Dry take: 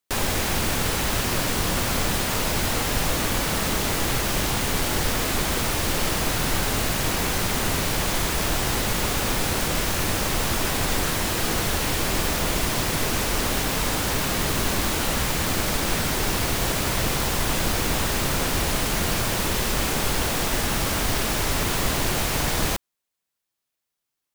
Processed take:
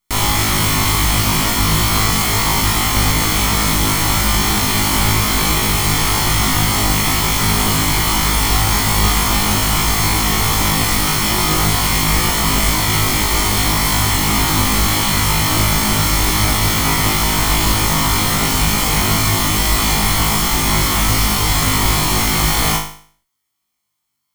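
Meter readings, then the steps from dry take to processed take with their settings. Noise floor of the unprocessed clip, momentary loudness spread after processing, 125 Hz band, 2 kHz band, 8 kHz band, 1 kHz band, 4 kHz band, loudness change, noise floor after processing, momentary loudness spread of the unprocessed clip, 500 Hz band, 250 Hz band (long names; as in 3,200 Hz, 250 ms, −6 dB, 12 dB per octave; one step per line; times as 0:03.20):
−83 dBFS, 0 LU, +10.0 dB, +7.5 dB, +9.0 dB, +9.5 dB, +9.5 dB, +9.0 dB, −71 dBFS, 0 LU, +2.5 dB, +8.0 dB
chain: lower of the sound and its delayed copy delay 0.94 ms
flutter between parallel walls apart 3.3 metres, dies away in 0.5 s
level +6.5 dB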